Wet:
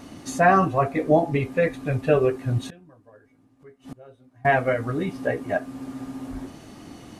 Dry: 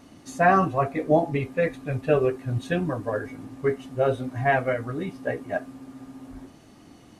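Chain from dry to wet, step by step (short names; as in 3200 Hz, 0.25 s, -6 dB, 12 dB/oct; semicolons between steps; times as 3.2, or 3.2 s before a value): in parallel at +3 dB: compressor 5:1, threshold -35 dBFS, peak gain reduction 18.5 dB; 2.67–4.45 on the sum: flipped gate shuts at -26 dBFS, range -27 dB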